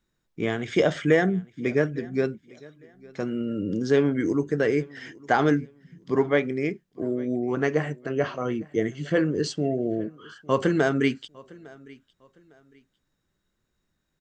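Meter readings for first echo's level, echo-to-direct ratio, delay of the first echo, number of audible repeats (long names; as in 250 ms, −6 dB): −23.5 dB, −23.0 dB, 855 ms, 2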